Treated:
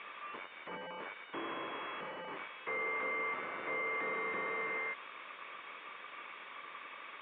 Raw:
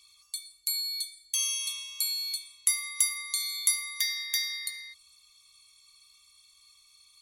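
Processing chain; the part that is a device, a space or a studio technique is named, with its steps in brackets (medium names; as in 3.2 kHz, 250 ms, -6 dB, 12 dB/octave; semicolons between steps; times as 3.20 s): 2.46–4.50 s: high-pass 290 Hz 12 dB/octave; digital answering machine (band-pass 360–3100 Hz; one-bit delta coder 16 kbps, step -51 dBFS; cabinet simulation 410–3100 Hz, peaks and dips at 750 Hz -6 dB, 1.1 kHz +5 dB, 2.8 kHz -3 dB); trim +12.5 dB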